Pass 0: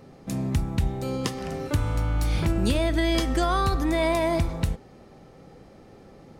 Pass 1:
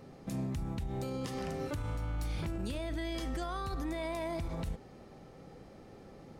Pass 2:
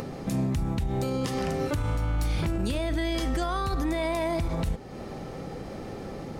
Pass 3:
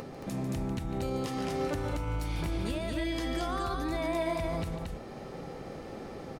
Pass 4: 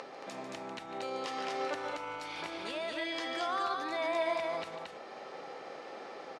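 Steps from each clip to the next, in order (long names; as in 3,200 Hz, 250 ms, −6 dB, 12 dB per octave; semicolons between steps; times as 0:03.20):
downward compressor, threshold −24 dBFS, peak gain reduction 7 dB; brickwall limiter −25.5 dBFS, peak gain reduction 10.5 dB; level −3.5 dB
upward compression, threshold −38 dBFS; level +9 dB
bass and treble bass −4 dB, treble −2 dB; on a send: loudspeakers that aren't time-aligned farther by 50 metres −10 dB, 77 metres −3 dB; on the sum: level −5 dB
band-pass filter 610–5,200 Hz; level +2.5 dB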